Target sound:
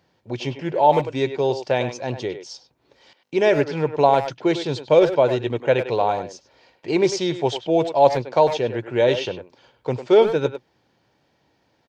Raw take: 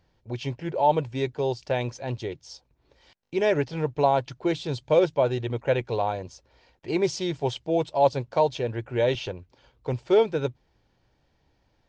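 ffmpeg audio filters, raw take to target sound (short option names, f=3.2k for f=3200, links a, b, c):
-filter_complex "[0:a]highpass=150,asplit=2[a][b];[b]adelay=100,highpass=300,lowpass=3.4k,asoftclip=type=hard:threshold=-17dB,volume=-9dB[c];[a][c]amix=inputs=2:normalize=0,volume=5.5dB"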